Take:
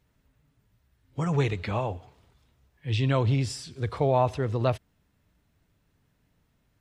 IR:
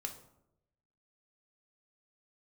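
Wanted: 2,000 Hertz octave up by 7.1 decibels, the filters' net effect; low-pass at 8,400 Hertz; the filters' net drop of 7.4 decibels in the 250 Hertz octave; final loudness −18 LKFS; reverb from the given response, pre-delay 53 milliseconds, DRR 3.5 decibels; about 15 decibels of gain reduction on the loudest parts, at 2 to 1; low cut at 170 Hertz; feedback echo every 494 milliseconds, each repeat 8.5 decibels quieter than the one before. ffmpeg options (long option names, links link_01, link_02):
-filter_complex "[0:a]highpass=170,lowpass=8400,equalizer=frequency=250:width_type=o:gain=-8.5,equalizer=frequency=2000:width_type=o:gain=9,acompressor=threshold=-47dB:ratio=2,aecho=1:1:494|988|1482|1976:0.376|0.143|0.0543|0.0206,asplit=2[link_01][link_02];[1:a]atrim=start_sample=2205,adelay=53[link_03];[link_02][link_03]afir=irnorm=-1:irlink=0,volume=-2dB[link_04];[link_01][link_04]amix=inputs=2:normalize=0,volume=22.5dB"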